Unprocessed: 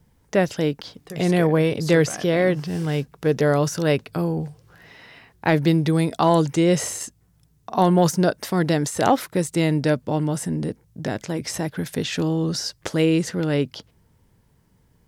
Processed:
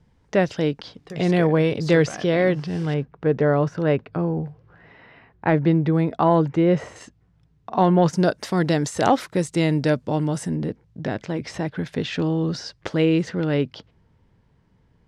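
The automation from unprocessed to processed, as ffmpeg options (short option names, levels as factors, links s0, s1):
-af "asetnsamples=n=441:p=0,asendcmd='2.94 lowpass f 1900;6.96 lowpass f 3100;8.13 lowpass f 7300;10.55 lowpass f 3700',lowpass=5000"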